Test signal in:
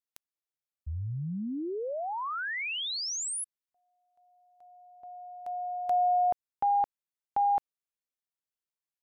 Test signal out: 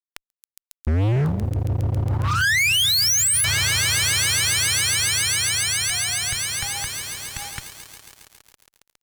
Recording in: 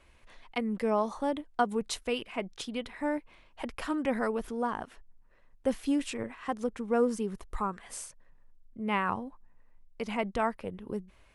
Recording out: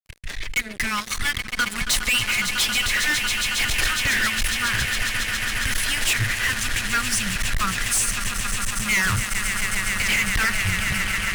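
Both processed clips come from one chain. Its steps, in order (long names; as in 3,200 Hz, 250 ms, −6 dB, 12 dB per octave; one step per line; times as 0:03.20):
elliptic band-stop filter 120–1,700 Hz, stop band 60 dB
rotating-speaker cabinet horn 6 Hz
on a send: echo that builds up and dies away 137 ms, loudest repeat 8, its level −16 dB
on the sum: fuzz pedal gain 50 dB, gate −57 dBFS
level −4.5 dB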